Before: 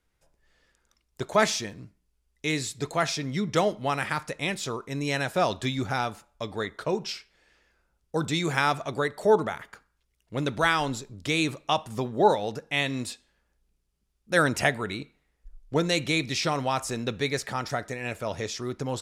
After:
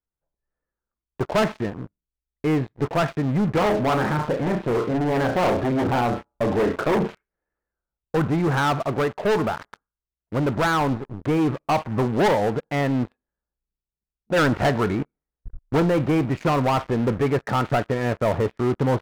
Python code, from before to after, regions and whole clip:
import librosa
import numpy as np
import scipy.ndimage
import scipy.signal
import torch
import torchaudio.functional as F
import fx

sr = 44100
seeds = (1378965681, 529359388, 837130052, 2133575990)

y = fx.chain(x, sr, fx.peak_eq(hz=310.0, db=9.5, octaves=2.8),
    fx.room_flutter(wall_m=5.7, rt60_s=0.26),
    fx.transformer_sat(knee_hz=2500.0), at=(3.58, 7.15))
y = scipy.signal.sosfilt(scipy.signal.butter(4, 1500.0, 'lowpass', fs=sr, output='sos'), y)
y = fx.leveller(y, sr, passes=5)
y = fx.rider(y, sr, range_db=10, speed_s=2.0)
y = y * librosa.db_to_amplitude(-7.0)